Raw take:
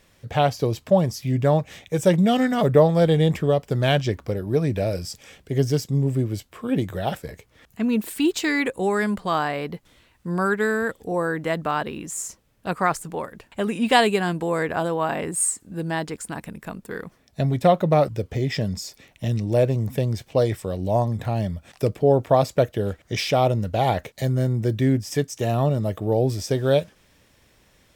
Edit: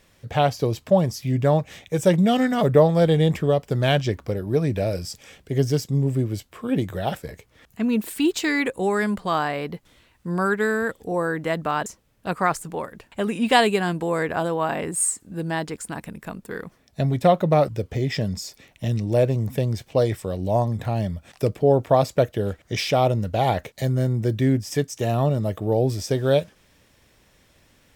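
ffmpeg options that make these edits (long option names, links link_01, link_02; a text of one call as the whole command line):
ffmpeg -i in.wav -filter_complex "[0:a]asplit=2[link_01][link_02];[link_01]atrim=end=11.862[link_03];[link_02]atrim=start=12.258[link_04];[link_03][link_04]acrossfade=duration=0.004:curve1=hsin:curve2=hsin" out.wav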